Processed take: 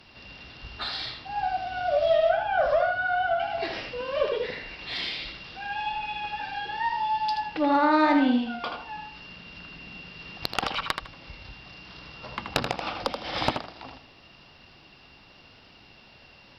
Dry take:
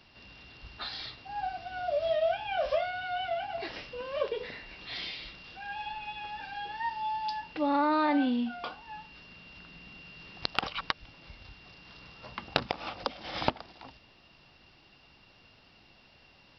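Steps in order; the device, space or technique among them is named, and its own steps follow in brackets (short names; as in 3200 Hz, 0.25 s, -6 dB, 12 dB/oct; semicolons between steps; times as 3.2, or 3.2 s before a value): 2.29–3.4 resonant high shelf 1800 Hz -6 dB, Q 3; rockabilly slapback (tube stage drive 18 dB, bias 0.2; tape echo 80 ms, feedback 26%, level -4.5 dB, low-pass 4700 Hz); gain +6 dB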